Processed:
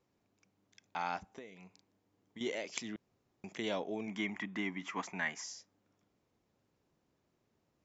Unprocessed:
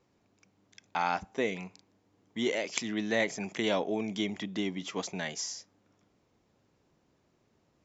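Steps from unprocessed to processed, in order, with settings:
0:01.18–0:02.41: downward compressor 8 to 1, threshold −40 dBFS, peak gain reduction 15 dB
0:02.96–0:03.44: fill with room tone
0:04.07–0:05.44: octave-band graphic EQ 125/250/500/1,000/2,000/4,000 Hz −4/+5/−7/+10/+11/−8 dB
level −7.5 dB

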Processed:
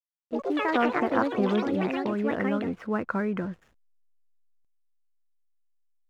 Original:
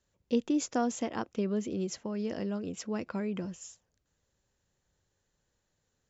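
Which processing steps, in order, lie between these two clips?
fade in at the beginning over 1.12 s
dynamic equaliser 2,900 Hz, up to +4 dB, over −55 dBFS, Q 0.83
low-pass filter sweep 1,400 Hz → 2,800 Hz, 0:03.01–0:05.46
slack as between gear wheels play −55 dBFS
delay with pitch and tempo change per echo 84 ms, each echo +5 semitones, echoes 3
level +5 dB

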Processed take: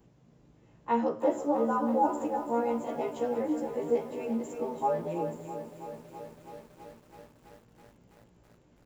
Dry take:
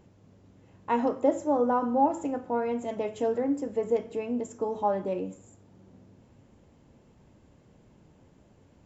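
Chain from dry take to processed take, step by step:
every overlapping window played backwards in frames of 34 ms
on a send: repeating echo 351 ms, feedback 17%, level −12 dB
on the sum: feedback echo at a low word length 327 ms, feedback 80%, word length 9 bits, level −12 dB

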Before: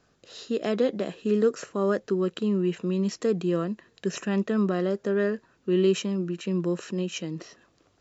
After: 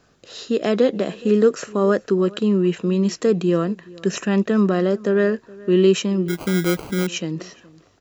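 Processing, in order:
slap from a distant wall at 72 metres, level −22 dB
0:06.28–0:07.07: sample-rate reduction 1,800 Hz, jitter 0%
level +7 dB

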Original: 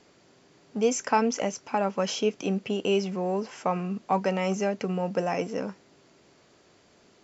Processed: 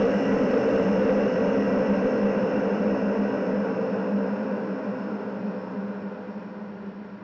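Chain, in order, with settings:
low-pass that shuts in the quiet parts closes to 950 Hz, open at −25 dBFS
extreme stretch with random phases 28×, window 0.50 s, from 0:05.60
harmonic generator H 5 −16 dB, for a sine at −19 dBFS
high-frequency loss of the air 190 metres
level +7.5 dB

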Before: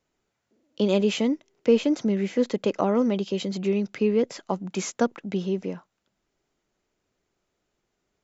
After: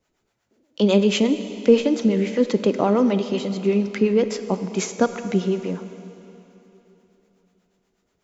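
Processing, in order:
two-band tremolo in antiphase 8.2 Hz, depth 70%, crossover 520 Hz
convolution reverb RT60 3.4 s, pre-delay 4 ms, DRR 9.5 dB
level +7.5 dB

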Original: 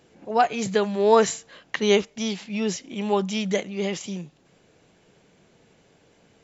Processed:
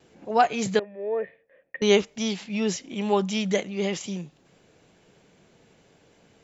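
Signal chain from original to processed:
0:00.79–0:01.82: formant resonators in series e
noise gate with hold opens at −52 dBFS

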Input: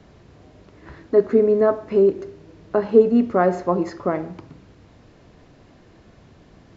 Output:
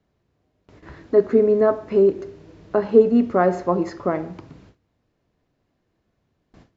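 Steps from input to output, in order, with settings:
noise gate with hold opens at −38 dBFS

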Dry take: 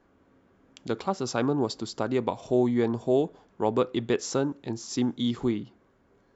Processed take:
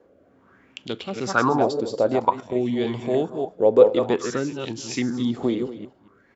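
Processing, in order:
delay that plays each chunk backwards 150 ms, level −7 dB
high-pass filter 62 Hz
in parallel at −2.5 dB: brickwall limiter −19 dBFS, peak gain reduction 9 dB
on the sum: rotating-speaker cabinet horn 1.2 Hz
single-tap delay 231 ms −15.5 dB
0:02.16–0:02.56: output level in coarse steps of 11 dB
on a send at −20 dB: convolution reverb, pre-delay 3 ms
on the sum: auto-filter bell 0.53 Hz 490–3,100 Hz +17 dB
level −2 dB

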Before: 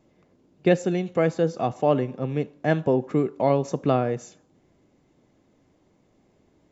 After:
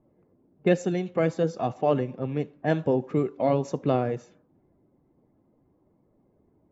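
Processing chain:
spectral magnitudes quantised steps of 15 dB
low-pass that shuts in the quiet parts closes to 990 Hz, open at −18.5 dBFS
level −2 dB

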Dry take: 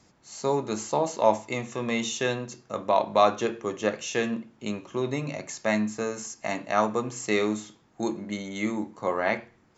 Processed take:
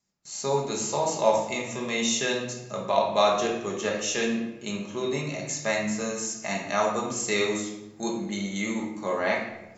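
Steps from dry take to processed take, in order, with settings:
high-shelf EQ 3,100 Hz +11.5 dB
rectangular room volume 360 cubic metres, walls mixed, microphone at 1.3 metres
noise gate with hold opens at −37 dBFS
level −5 dB

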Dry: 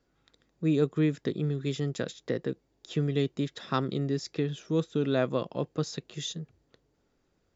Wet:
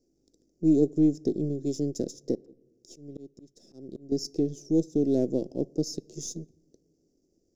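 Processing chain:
gain on one half-wave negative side −7 dB
drawn EQ curve 140 Hz 0 dB, 330 Hz +12 dB, 700 Hz −3 dB, 1,100 Hz −30 dB, 3,600 Hz −16 dB, 5,500 Hz +12 dB, 9,700 Hz +1 dB
0:02.35–0:04.12: volume swells 636 ms
on a send: convolution reverb RT60 1.1 s, pre-delay 5 ms, DRR 23 dB
on the sum: level −2 dB

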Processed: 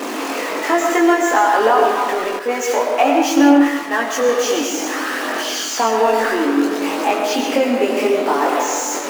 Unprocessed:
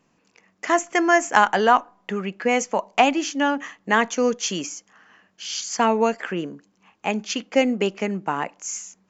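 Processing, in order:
converter with a step at zero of −18.5 dBFS
elliptic high-pass filter 260 Hz, stop band 40 dB
high-shelf EQ 2,100 Hz −8.5 dB
downward compressor, threshold −15 dBFS, peak gain reduction 5 dB
comb and all-pass reverb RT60 1.7 s, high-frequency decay 0.55×, pre-delay 70 ms, DRR 1.5 dB
multi-voice chorus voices 2, 0.28 Hz, delay 22 ms, depth 1.2 ms
0:02.39–0:04.29: multiband upward and downward expander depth 100%
level +7 dB

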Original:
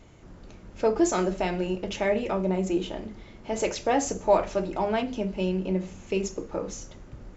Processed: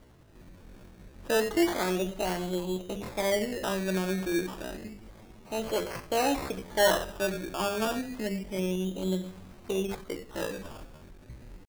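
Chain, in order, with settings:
sample-and-hold swept by an LFO 17×, swing 60% 0.47 Hz
tempo change 0.63×
level −3.5 dB

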